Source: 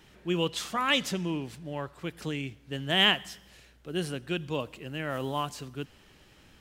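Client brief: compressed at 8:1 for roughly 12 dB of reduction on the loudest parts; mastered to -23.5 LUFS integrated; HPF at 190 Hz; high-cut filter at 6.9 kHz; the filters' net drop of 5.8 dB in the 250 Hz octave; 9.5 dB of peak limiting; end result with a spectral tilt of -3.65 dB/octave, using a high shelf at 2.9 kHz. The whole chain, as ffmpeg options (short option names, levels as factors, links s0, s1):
-af "highpass=190,lowpass=6900,equalizer=f=250:t=o:g=-6.5,highshelf=f=2900:g=-8.5,acompressor=threshold=0.0224:ratio=8,volume=9.44,alimiter=limit=0.266:level=0:latency=1"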